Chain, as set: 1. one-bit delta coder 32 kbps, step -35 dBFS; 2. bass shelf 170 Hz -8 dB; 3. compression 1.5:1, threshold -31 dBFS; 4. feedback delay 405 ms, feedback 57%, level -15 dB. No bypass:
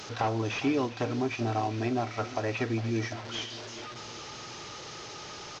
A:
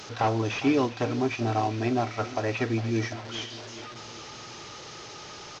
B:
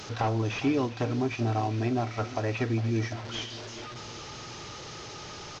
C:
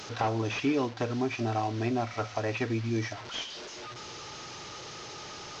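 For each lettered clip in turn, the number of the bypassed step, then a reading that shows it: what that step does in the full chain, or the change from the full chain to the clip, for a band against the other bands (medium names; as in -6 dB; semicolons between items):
3, momentary loudness spread change +4 LU; 2, 125 Hz band +4.5 dB; 4, echo-to-direct -13.5 dB to none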